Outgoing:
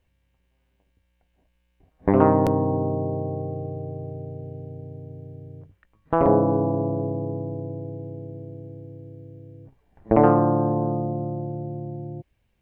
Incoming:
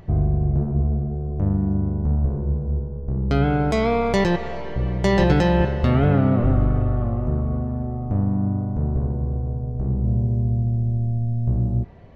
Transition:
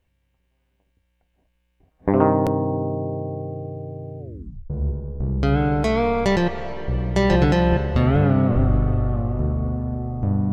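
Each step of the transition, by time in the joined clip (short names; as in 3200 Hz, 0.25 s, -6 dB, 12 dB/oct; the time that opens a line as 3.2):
outgoing
4.19 tape stop 0.51 s
4.7 switch to incoming from 2.58 s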